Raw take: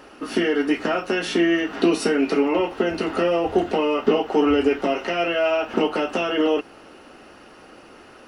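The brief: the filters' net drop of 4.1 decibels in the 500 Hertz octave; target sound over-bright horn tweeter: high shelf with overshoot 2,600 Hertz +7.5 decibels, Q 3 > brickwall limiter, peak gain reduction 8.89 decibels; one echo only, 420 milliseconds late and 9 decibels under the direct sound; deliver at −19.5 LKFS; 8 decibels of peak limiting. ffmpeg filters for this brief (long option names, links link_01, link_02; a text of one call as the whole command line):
ffmpeg -i in.wav -af "equalizer=frequency=500:width_type=o:gain=-5,alimiter=limit=-15.5dB:level=0:latency=1,highshelf=frequency=2600:width_type=q:width=3:gain=7.5,aecho=1:1:420:0.355,volume=6dB,alimiter=limit=-11dB:level=0:latency=1" out.wav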